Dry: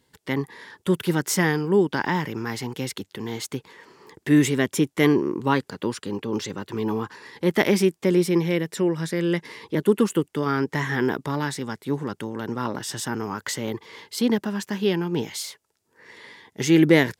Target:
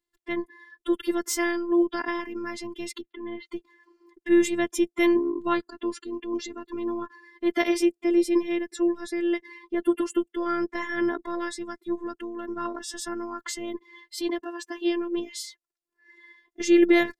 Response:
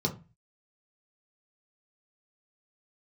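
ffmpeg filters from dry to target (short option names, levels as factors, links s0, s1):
-filter_complex "[0:a]asettb=1/sr,asplit=3[s0][s1][s2];[s0]atrim=end=3.014[s3];[s1]atrim=start=3.01:end=3.47,asetpts=PTS-STARTPTS,afade=t=in:d=0.004:c=qsin,afade=t=out:st=0.456:d=0.004:c=qsin,lowpass=f=3100:w=0.5412,lowpass=f=3100:w=1.3066[s4];[s2]atrim=start=3.466[s5];[s3][s4]acrossfade=d=0.004:c1=hsin:c2=qsin[s6];[s6][s5]acrossfade=d=0.004:c1=qsin:c2=hsin,afftfilt=real='hypot(re,im)*cos(PI*b)':imag='0':win_size=512:overlap=0.75,afftdn=nr=18:nf=-39"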